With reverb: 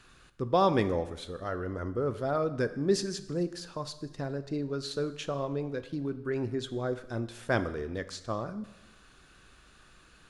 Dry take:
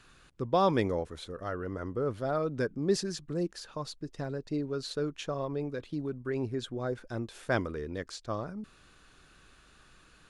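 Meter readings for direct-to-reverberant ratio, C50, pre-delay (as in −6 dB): 11.0 dB, 13.5 dB, 5 ms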